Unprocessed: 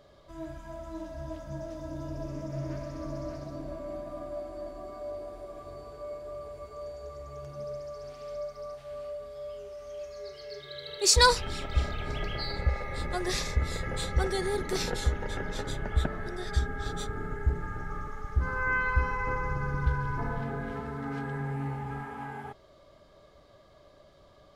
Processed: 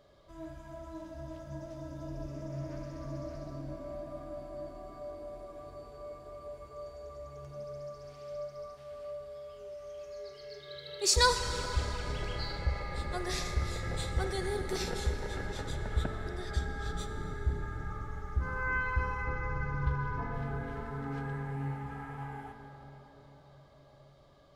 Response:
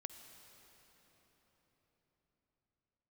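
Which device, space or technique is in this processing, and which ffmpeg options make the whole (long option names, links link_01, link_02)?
cathedral: -filter_complex "[1:a]atrim=start_sample=2205[link_01];[0:a][link_01]afir=irnorm=-1:irlink=0,asettb=1/sr,asplit=3[link_02][link_03][link_04];[link_02]atrim=end=19.244[link_05];[link_03]atrim=start=19.24:end=20.34,asetpts=PTS-STARTPTS,afade=type=in:duration=0.004:curve=qsin,afade=type=out:start_time=1.096:duration=0.004:curve=qsin,lowpass=5900[link_06];[link_04]atrim=start=20.336[link_07];[link_05][link_06]acrossfade=duration=0.004:curve1=hsin:curve2=qsin[link_08];[link_08][link_07]acrossfade=duration=0.004:curve1=qsin:curve2=hsin"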